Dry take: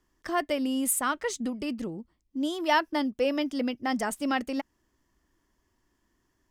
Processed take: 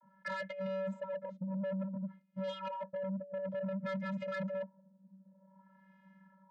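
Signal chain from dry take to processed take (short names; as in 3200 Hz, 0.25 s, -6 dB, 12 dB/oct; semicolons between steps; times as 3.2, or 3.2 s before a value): vocoder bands 32, square 191 Hz; negative-ratio compressor -38 dBFS, ratio -1; LFO low-pass sine 0.54 Hz 370–2300 Hz; limiter -29.5 dBFS, peak gain reduction 10 dB; soft clip -36 dBFS, distortion -13 dB; gain +2.5 dB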